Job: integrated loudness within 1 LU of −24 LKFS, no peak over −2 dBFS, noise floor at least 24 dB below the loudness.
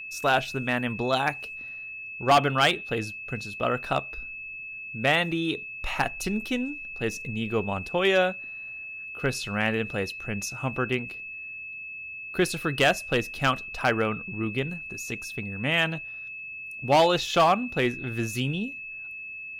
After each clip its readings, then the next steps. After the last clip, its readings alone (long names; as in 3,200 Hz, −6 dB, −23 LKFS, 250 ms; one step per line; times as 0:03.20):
share of clipped samples 0.3%; peaks flattened at −13.5 dBFS; interfering tone 2,600 Hz; level of the tone −36 dBFS; integrated loudness −27.0 LKFS; sample peak −13.5 dBFS; target loudness −24.0 LKFS
→ clipped peaks rebuilt −13.5 dBFS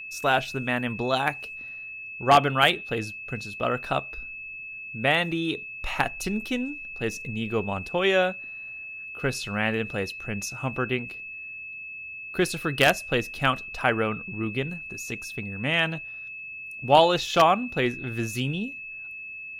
share of clipped samples 0.0%; interfering tone 2,600 Hz; level of the tone −36 dBFS
→ notch filter 2,600 Hz, Q 30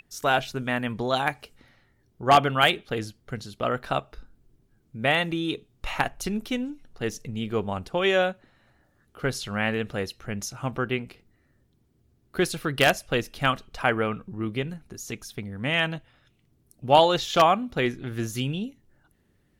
interfering tone none found; integrated loudness −26.0 LKFS; sample peak −4.5 dBFS; target loudness −24.0 LKFS
→ level +2 dB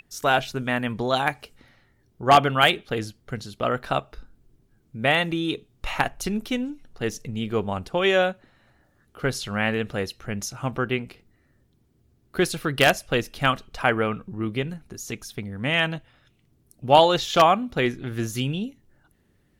integrated loudness −24.0 LKFS; sample peak −2.5 dBFS; background noise floor −64 dBFS